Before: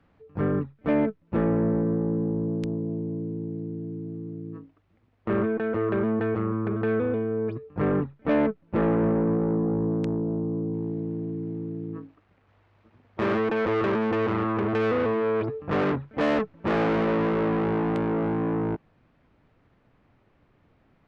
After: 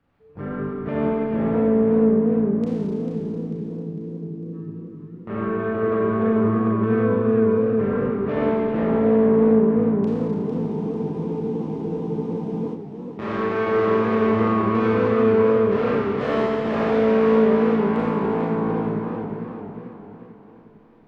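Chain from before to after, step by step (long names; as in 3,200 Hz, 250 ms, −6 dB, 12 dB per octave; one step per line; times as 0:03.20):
four-comb reverb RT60 2.8 s, combs from 28 ms, DRR −7 dB
frozen spectrum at 0:10.45, 2.28 s
feedback echo with a swinging delay time 448 ms, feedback 48%, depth 167 cents, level −8 dB
level −7 dB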